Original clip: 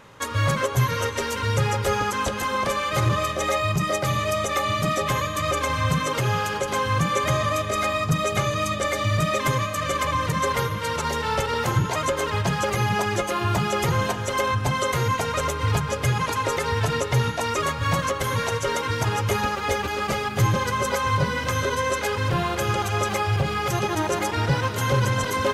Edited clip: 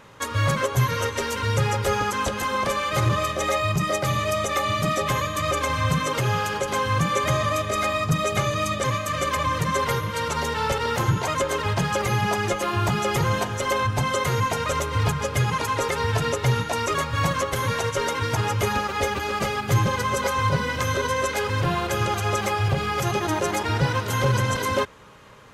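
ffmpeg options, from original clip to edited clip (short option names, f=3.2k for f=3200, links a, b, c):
-filter_complex "[0:a]asplit=2[a][b];[a]atrim=end=8.842[c];[b]atrim=start=9.518[d];[c][d]acrossfade=d=0.004:c1=hsin:c2=hsin"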